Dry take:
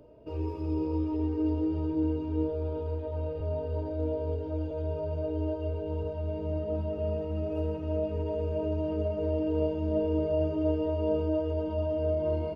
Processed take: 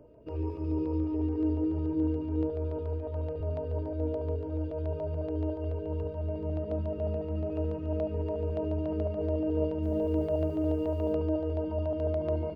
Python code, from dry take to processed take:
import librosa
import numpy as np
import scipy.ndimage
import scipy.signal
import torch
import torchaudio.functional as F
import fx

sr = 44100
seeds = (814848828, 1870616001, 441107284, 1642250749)

y = fx.quant_dither(x, sr, seeds[0], bits=10, dither='none', at=(9.82, 11.13), fade=0.02)
y = fx.filter_lfo_notch(y, sr, shape='square', hz=7.0, low_hz=770.0, high_hz=3800.0, q=1.4)
y = fx.high_shelf(y, sr, hz=3200.0, db=-8.0)